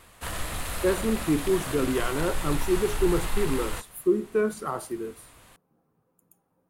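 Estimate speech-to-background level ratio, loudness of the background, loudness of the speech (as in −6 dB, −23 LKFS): 5.5 dB, −33.5 LKFS, −28.0 LKFS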